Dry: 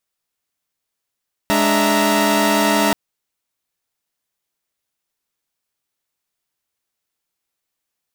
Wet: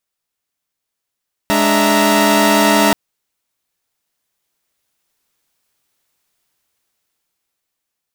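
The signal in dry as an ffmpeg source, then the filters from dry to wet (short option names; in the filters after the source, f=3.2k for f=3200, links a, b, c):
-f lavfi -i "aevalsrc='0.141*((2*mod(207.65*t,1)-1)+(2*mod(293.66*t,1)-1)+(2*mod(659.26*t,1)-1)+(2*mod(932.33*t,1)-1))':d=1.43:s=44100"
-af "dynaudnorm=f=290:g=11:m=11dB"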